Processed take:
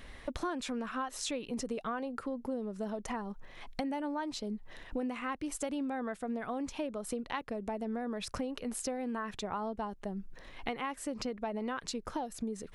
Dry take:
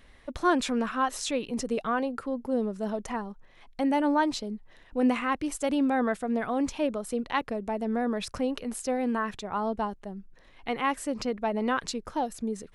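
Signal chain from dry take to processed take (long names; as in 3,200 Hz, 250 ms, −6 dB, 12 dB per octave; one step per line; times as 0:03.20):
downward compressor 8 to 1, threshold −40 dBFS, peak gain reduction 20.5 dB
level +6 dB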